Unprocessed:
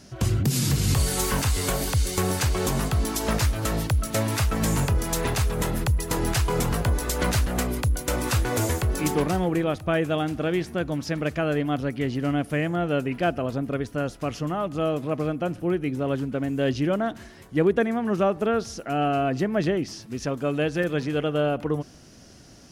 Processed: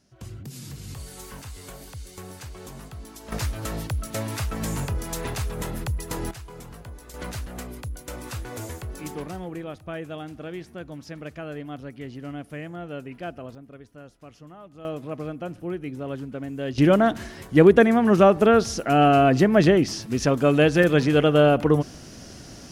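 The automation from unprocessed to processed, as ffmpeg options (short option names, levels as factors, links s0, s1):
-af "asetnsamples=n=441:p=0,asendcmd='3.32 volume volume -5dB;6.31 volume volume -17.5dB;7.14 volume volume -10.5dB;13.55 volume volume -17.5dB;14.85 volume volume -6dB;16.78 volume volume 7dB',volume=0.158"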